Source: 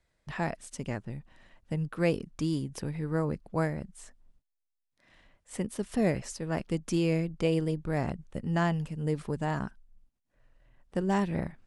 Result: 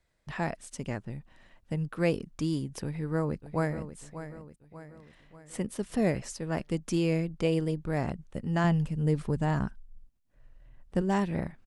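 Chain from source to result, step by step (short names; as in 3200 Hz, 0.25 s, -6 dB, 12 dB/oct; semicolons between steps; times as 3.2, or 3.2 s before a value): 2.83–3.96 echo throw 0.59 s, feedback 50%, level -12 dB; 8.64–11.02 low shelf 170 Hz +9 dB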